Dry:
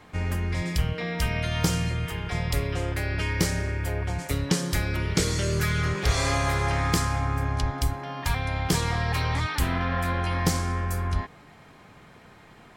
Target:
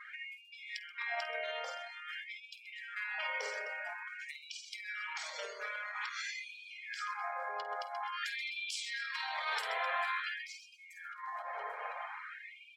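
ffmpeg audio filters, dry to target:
ffmpeg -i in.wav -filter_complex "[0:a]asettb=1/sr,asplit=3[link_01][link_02][link_03];[link_01]atrim=end=8.124[link_04];[link_02]atrim=start=8.12:end=10.29,asetpts=PTS-STARTPTS,afade=type=in:duration=0.004:curve=qsin,afade=type=out:start_time=2.166:duration=0.004:curve=qsin,highshelf=frequency=2100:gain=9[link_05];[link_03]atrim=start=10.286[link_06];[link_04][link_05]acrossfade=duration=0.004:curve1=hsin:curve2=qsin[link_07];[link_07][link_06]acrossfade=duration=0.004:curve1=qsin:curve2=hsin,aecho=1:1:50|130|258|462.8|790.5:0.631|0.398|0.251|0.158|0.1,acompressor=threshold=-32dB:ratio=4,lowpass=frequency=3300:poles=1,equalizer=frequency=310:width_type=o:width=0.65:gain=-9.5,asoftclip=type=tanh:threshold=-25dB,alimiter=level_in=11.5dB:limit=-24dB:level=0:latency=1:release=190,volume=-11.5dB,afftdn=noise_reduction=21:noise_floor=-55,afftfilt=real='re*gte(b*sr/1024,400*pow(2300/400,0.5+0.5*sin(2*PI*0.49*pts/sr)))':imag='im*gte(b*sr/1024,400*pow(2300/400,0.5+0.5*sin(2*PI*0.49*pts/sr)))':win_size=1024:overlap=0.75,volume=11dB" out.wav

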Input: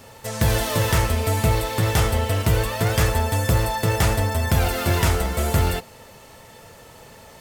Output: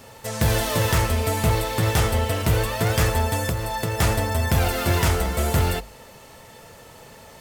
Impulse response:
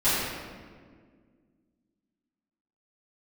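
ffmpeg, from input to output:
-filter_complex "[0:a]bandreject=frequency=50:width_type=h:width=6,bandreject=frequency=100:width_type=h:width=6,asettb=1/sr,asplit=3[link_01][link_02][link_03];[link_01]atrim=end=3.474[link_04];[link_02]atrim=start=3.47:end=3.99,asetpts=PTS-STARTPTS,afade=type=in:duration=0.004:curve=qsin,afade=type=out:start_time=0.516:duration=0.004:curve=qsin,acompressor=threshold=-22dB:ratio=6[link_05];[link_03]atrim=start=3.986[link_06];[link_04][link_05]acrossfade=duration=0.004:curve1=hsin:curve2=qsin[link_07];[link_07][link_06]acrossfade=duration=0.004:curve1=qsin:curve2=hsin,aeval=exprs='0.251*(abs(mod(val(0)/0.251+3,4)-2)-1)':channel_layout=same"

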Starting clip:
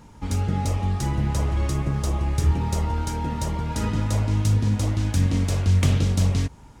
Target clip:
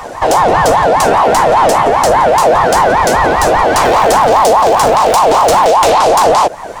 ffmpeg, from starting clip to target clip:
ffmpeg -i in.wav -filter_complex "[0:a]asettb=1/sr,asplit=3[link_01][link_02][link_03];[link_01]atrim=end=3.844[link_04];[link_02]atrim=start=3.84:end=5.71,asetpts=PTS-STARTPTS,afade=type=in:duration=0.004:curve=qsin,afade=type=out:start_time=1.866:duration=0.004:curve=qsin,aeval=exprs='val(0)+0.5*0.0141*sgn(val(0))':channel_layout=same[link_05];[link_03]atrim=start=5.706[link_06];[link_04][link_05]acrossfade=duration=0.004:curve1=hsin:curve2=qsin[link_07];[link_07][link_06]acrossfade=duration=0.004:curve1=qsin:curve2=hsin,asplit=2[link_08][link_09];[link_09]acompressor=threshold=-33dB:ratio=12,volume=-2dB[link_10];[link_08][link_10]amix=inputs=2:normalize=0,apsyclip=21.5dB,aeval=exprs='val(0)*sin(2*PI*770*n/s+770*0.3/5*sin(2*PI*5*n/s))':channel_layout=same,volume=-2dB" out.wav

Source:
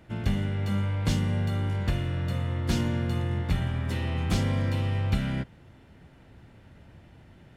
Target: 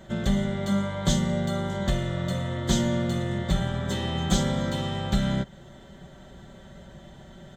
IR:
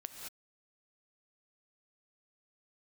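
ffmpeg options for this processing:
-filter_complex "[0:a]superequalizer=8b=1.78:12b=0.398:13b=2:15b=2.51:16b=0.501,asplit=2[link_01][link_02];[link_02]acompressor=threshold=-36dB:ratio=6,volume=-2.5dB[link_03];[link_01][link_03]amix=inputs=2:normalize=0,aecho=1:1:5.2:0.71"

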